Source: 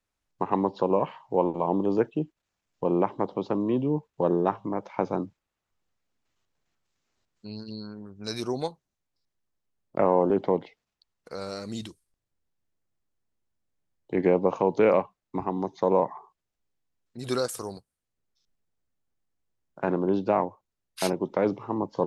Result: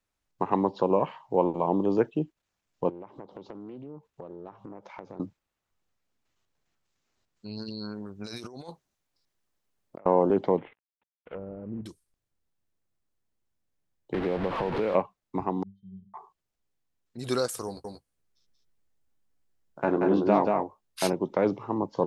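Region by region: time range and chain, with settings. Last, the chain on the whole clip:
0:02.89–0:05.20: downward compressor, threshold −40 dBFS + highs frequency-modulated by the lows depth 0.27 ms
0:07.57–0:10.06: compressor whose output falls as the input rises −39 dBFS + low-shelf EQ 240 Hz −5.5 dB
0:10.58–0:11.86: variable-slope delta modulation 16 kbit/s + treble cut that deepens with the level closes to 450 Hz, closed at −33 dBFS
0:14.14–0:14.95: linear delta modulator 64 kbit/s, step −21 dBFS + downward compressor 2.5 to 1, threshold −25 dBFS + high-frequency loss of the air 390 metres
0:15.63–0:16.14: Chebyshev band-stop filter 170–3,500 Hz, order 3 + resonances in every octave G, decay 0.27 s + one half of a high-frequency compander decoder only
0:17.66–0:21.05: double-tracking delay 14 ms −6.5 dB + single-tap delay 183 ms −3 dB
whole clip: no processing

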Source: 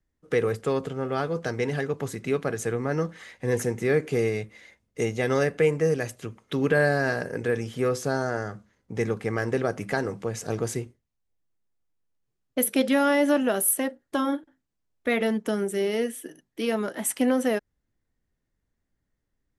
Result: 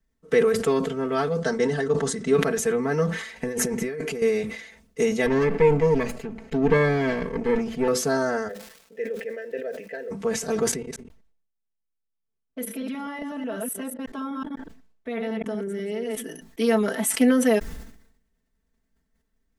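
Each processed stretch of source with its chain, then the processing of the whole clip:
0:01.40–0:02.35: elliptic low-pass filter 9,500 Hz, stop band 50 dB + parametric band 2,400 Hz −11 dB 0.31 octaves + transient designer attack +3 dB, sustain −1 dB
0:03.36–0:04.22: notch filter 3,600 Hz, Q 16 + compressor whose output falls as the input rises −32 dBFS
0:05.26–0:07.88: lower of the sound and its delayed copy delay 0.42 ms + low-pass filter 1,500 Hz 6 dB per octave
0:08.47–0:10.10: formant filter e + surface crackle 420 per second −56 dBFS
0:10.71–0:16.24: delay that plays each chunk backwards 124 ms, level −6 dB + low-pass filter 2,900 Hz 6 dB per octave + output level in coarse steps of 17 dB
whole clip: comb filter 4.5 ms, depth 99%; level that may fall only so fast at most 74 dB per second

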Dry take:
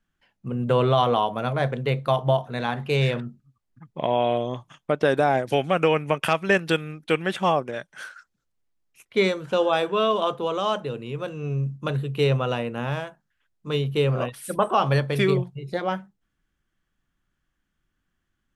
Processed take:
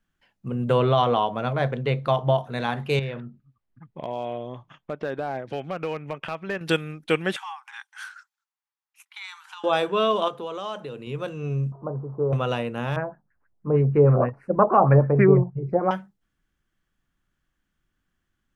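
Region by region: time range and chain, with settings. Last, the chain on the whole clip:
0:00.78–0:02.38: upward compression, threshold −27 dBFS + high-frequency loss of the air 65 metres
0:02.99–0:06.61: low-pass filter 3,000 Hz + downward compressor 1.5 to 1, threshold −41 dBFS + hard clipping −20.5 dBFS
0:07.36–0:09.64: downward compressor 12 to 1, threshold −27 dBFS + linear-phase brick-wall high-pass 760 Hz + one half of a high-frequency compander decoder only
0:10.28–0:11.07: downward compressor 2 to 1, threshold −33 dBFS + low-shelf EQ 110 Hz −9 dB
0:11.72–0:12.33: linear delta modulator 64 kbit/s, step −36.5 dBFS + Butterworth low-pass 1,100 Hz 48 dB per octave + low-shelf EQ 330 Hz −6.5 dB
0:12.96–0:15.91: tilt shelving filter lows +6 dB, about 830 Hz + auto-filter low-pass sine 6.3 Hz 720–1,900 Hz + Butterworth band-reject 3,400 Hz, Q 1.7
whole clip: no processing

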